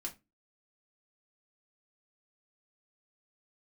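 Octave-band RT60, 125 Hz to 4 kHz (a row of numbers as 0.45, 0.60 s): 0.35, 0.35, 0.25, 0.20, 0.20, 0.20 s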